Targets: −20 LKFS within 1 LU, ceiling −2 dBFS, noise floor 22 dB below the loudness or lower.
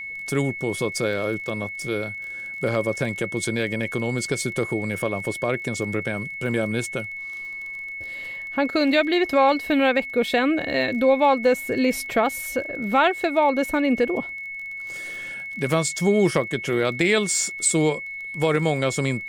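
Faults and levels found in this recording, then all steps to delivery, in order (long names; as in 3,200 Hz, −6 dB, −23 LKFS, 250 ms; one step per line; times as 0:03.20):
crackle rate 25 per second; interfering tone 2,200 Hz; level of the tone −31 dBFS; integrated loudness −23.5 LKFS; sample peak −8.5 dBFS; target loudness −20.0 LKFS
→ click removal
notch filter 2,200 Hz, Q 30
level +3.5 dB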